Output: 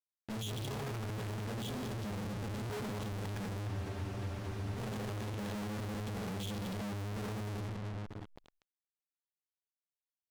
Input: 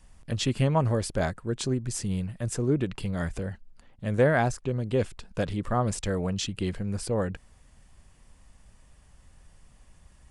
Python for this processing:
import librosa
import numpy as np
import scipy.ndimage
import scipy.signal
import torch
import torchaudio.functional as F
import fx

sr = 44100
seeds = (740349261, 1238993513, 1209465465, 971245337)

y = fx.low_shelf(x, sr, hz=460.0, db=5.0)
y = np.clip(10.0 ** (20.5 / 20.0) * y, -1.0, 1.0) / 10.0 ** (20.5 / 20.0)
y = scipy.signal.sosfilt(scipy.signal.butter(4, 110.0, 'highpass', fs=sr, output='sos'), y)
y = fx.low_shelf(y, sr, hz=190.0, db=-2.5)
y = fx.notch(y, sr, hz=1600.0, q=17.0)
y = fx.octave_resonator(y, sr, note='G#', decay_s=0.35)
y = fx.room_shoebox(y, sr, seeds[0], volume_m3=500.0, walls='mixed', distance_m=2.0)
y = fx.fuzz(y, sr, gain_db=52.0, gate_db=-57.0)
y = fx.tube_stage(y, sr, drive_db=37.0, bias=0.45)
y = fx.spec_freeze(y, sr, seeds[1], at_s=3.7, hold_s=1.07)
y = fx.pre_swell(y, sr, db_per_s=87.0)
y = y * 10.0 ** (-1.5 / 20.0)